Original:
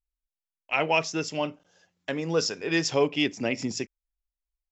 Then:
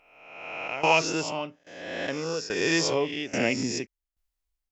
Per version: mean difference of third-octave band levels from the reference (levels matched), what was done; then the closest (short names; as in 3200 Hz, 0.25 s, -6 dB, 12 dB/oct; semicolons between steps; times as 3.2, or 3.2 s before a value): 6.0 dB: spectral swells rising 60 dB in 0.91 s; in parallel at 0 dB: compressor, threshold -35 dBFS, peak gain reduction 17.5 dB; on the sum: tremolo saw down 1.2 Hz, depth 85%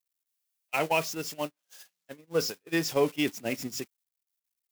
9.0 dB: switching spikes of -21 dBFS; gate -25 dBFS, range -42 dB; high shelf 3400 Hz -8.5 dB; gain -1.5 dB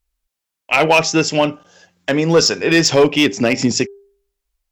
3.0 dB: de-hum 399.3 Hz, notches 4; in parallel at +1 dB: limiter -18.5 dBFS, peak gain reduction 7.5 dB; on the sum: one-sided clip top -14 dBFS; gain +8 dB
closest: third